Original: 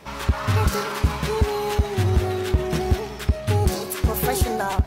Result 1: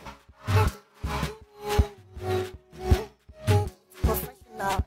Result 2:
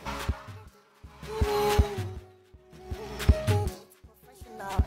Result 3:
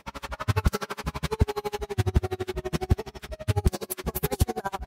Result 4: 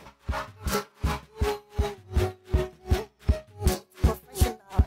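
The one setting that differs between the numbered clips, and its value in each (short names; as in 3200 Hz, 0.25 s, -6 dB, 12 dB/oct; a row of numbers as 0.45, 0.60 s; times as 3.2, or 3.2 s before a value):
dB-linear tremolo, rate: 1.7, 0.6, 12, 2.7 Hz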